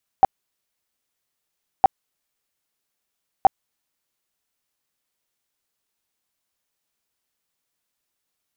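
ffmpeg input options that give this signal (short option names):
-f lavfi -i "aevalsrc='0.447*sin(2*PI*772*mod(t,1.61))*lt(mod(t,1.61),14/772)':d=4.83:s=44100"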